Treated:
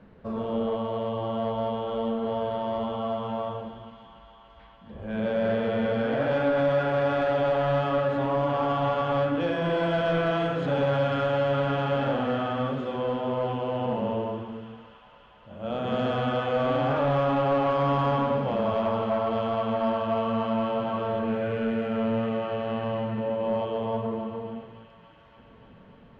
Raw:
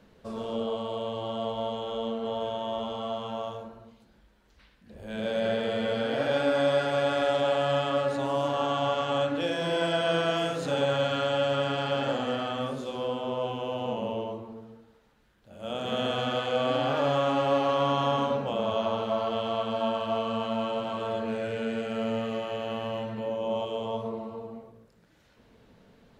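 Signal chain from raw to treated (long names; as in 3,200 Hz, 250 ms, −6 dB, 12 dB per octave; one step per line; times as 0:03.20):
bass and treble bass +14 dB, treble −13 dB
mid-hump overdrive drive 16 dB, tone 1,400 Hz, clips at −11 dBFS
delay with a high-pass on its return 288 ms, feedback 81%, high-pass 1,500 Hz, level −11.5 dB
level −3.5 dB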